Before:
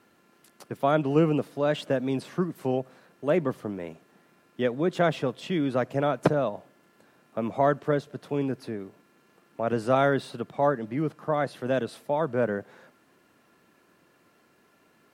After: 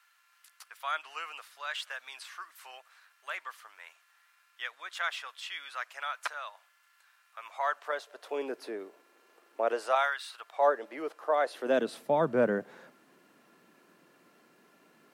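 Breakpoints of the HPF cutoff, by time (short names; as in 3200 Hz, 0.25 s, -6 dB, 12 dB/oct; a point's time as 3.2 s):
HPF 24 dB/oct
7.39 s 1200 Hz
8.59 s 360 Hz
9.64 s 360 Hz
10.24 s 1400 Hz
10.7 s 450 Hz
11.44 s 450 Hz
12.03 s 150 Hz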